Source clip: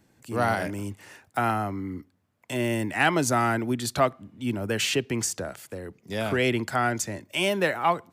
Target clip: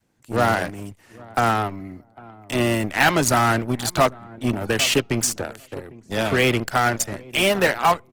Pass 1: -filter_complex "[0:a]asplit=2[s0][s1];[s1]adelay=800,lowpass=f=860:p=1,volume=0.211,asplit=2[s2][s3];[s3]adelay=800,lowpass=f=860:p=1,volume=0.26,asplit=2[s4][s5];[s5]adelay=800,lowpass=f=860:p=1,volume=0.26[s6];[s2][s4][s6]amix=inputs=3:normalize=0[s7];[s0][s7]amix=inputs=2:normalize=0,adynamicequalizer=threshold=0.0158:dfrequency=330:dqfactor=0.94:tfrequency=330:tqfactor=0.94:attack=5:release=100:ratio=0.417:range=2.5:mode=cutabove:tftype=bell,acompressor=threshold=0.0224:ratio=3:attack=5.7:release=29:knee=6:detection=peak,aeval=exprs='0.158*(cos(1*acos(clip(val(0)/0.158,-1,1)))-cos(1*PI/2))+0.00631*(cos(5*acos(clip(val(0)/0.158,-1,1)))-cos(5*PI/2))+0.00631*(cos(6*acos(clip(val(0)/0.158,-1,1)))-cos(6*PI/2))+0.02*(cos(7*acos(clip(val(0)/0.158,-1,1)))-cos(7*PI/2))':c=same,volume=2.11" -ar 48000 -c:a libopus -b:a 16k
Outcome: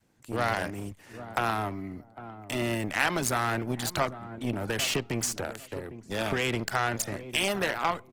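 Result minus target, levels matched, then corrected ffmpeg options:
compression: peak gain reduction +11.5 dB
-filter_complex "[0:a]asplit=2[s0][s1];[s1]adelay=800,lowpass=f=860:p=1,volume=0.211,asplit=2[s2][s3];[s3]adelay=800,lowpass=f=860:p=1,volume=0.26,asplit=2[s4][s5];[s5]adelay=800,lowpass=f=860:p=1,volume=0.26[s6];[s2][s4][s6]amix=inputs=3:normalize=0[s7];[s0][s7]amix=inputs=2:normalize=0,adynamicequalizer=threshold=0.0158:dfrequency=330:dqfactor=0.94:tfrequency=330:tqfactor=0.94:attack=5:release=100:ratio=0.417:range=2.5:mode=cutabove:tftype=bell,aeval=exprs='0.158*(cos(1*acos(clip(val(0)/0.158,-1,1)))-cos(1*PI/2))+0.00631*(cos(5*acos(clip(val(0)/0.158,-1,1)))-cos(5*PI/2))+0.00631*(cos(6*acos(clip(val(0)/0.158,-1,1)))-cos(6*PI/2))+0.02*(cos(7*acos(clip(val(0)/0.158,-1,1)))-cos(7*PI/2))':c=same,volume=2.11" -ar 48000 -c:a libopus -b:a 16k

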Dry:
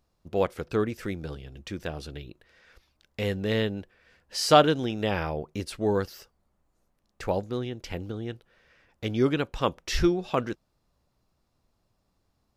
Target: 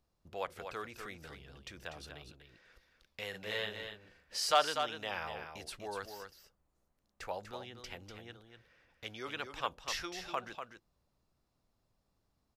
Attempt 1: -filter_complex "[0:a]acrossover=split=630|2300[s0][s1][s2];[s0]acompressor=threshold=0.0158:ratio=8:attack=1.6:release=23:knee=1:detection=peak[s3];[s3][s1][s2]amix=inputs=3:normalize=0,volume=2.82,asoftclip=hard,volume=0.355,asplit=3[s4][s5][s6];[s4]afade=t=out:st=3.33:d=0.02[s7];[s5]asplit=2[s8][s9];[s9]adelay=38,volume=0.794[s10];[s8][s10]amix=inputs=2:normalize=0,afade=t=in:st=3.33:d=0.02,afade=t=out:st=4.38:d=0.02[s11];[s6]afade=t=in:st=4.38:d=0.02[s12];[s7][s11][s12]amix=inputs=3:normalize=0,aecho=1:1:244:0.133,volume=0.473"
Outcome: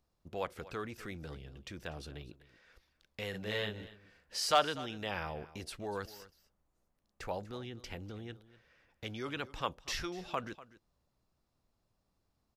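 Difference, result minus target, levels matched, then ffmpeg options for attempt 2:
compression: peak gain reduction -9.5 dB; echo-to-direct -10 dB
-filter_complex "[0:a]acrossover=split=630|2300[s0][s1][s2];[s0]acompressor=threshold=0.00447:ratio=8:attack=1.6:release=23:knee=1:detection=peak[s3];[s3][s1][s2]amix=inputs=3:normalize=0,volume=2.82,asoftclip=hard,volume=0.355,asplit=3[s4][s5][s6];[s4]afade=t=out:st=3.33:d=0.02[s7];[s5]asplit=2[s8][s9];[s9]adelay=38,volume=0.794[s10];[s8][s10]amix=inputs=2:normalize=0,afade=t=in:st=3.33:d=0.02,afade=t=out:st=4.38:d=0.02[s11];[s6]afade=t=in:st=4.38:d=0.02[s12];[s7][s11][s12]amix=inputs=3:normalize=0,aecho=1:1:244:0.422,volume=0.473"

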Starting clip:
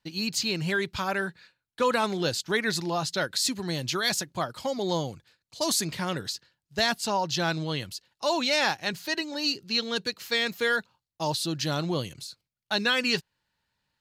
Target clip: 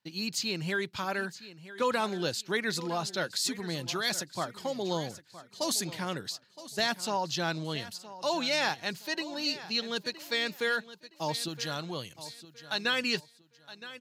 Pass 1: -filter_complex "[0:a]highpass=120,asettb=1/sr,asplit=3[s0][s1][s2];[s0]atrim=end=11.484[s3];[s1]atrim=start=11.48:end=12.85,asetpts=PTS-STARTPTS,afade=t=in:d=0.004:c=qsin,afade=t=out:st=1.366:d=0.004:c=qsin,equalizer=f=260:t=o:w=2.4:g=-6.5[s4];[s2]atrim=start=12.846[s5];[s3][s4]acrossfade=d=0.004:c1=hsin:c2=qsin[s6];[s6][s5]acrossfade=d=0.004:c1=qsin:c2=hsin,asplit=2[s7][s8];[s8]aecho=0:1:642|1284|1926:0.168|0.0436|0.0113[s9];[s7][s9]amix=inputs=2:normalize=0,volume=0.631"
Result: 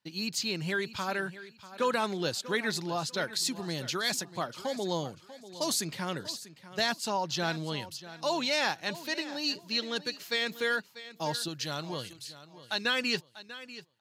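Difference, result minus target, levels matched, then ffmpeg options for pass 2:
echo 325 ms early
-filter_complex "[0:a]highpass=120,asettb=1/sr,asplit=3[s0][s1][s2];[s0]atrim=end=11.484[s3];[s1]atrim=start=11.48:end=12.85,asetpts=PTS-STARTPTS,afade=t=in:d=0.004:c=qsin,afade=t=out:st=1.366:d=0.004:c=qsin,equalizer=f=260:t=o:w=2.4:g=-6.5[s4];[s2]atrim=start=12.846[s5];[s3][s4]acrossfade=d=0.004:c1=hsin:c2=qsin[s6];[s6][s5]acrossfade=d=0.004:c1=qsin:c2=hsin,asplit=2[s7][s8];[s8]aecho=0:1:967|1934|2901:0.168|0.0436|0.0113[s9];[s7][s9]amix=inputs=2:normalize=0,volume=0.631"

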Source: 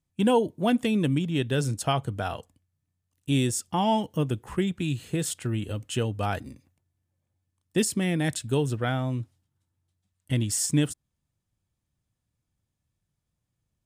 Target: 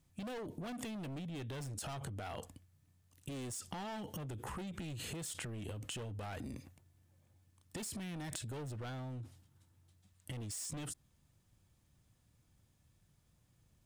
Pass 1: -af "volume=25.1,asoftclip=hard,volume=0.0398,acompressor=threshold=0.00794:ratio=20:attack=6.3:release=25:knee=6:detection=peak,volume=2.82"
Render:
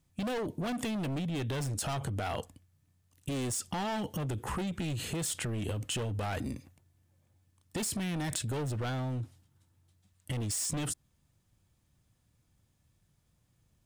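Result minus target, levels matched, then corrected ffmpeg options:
compression: peak gain reduction -9.5 dB
-af "volume=25.1,asoftclip=hard,volume=0.0398,acompressor=threshold=0.00251:ratio=20:attack=6.3:release=25:knee=6:detection=peak,volume=2.82"

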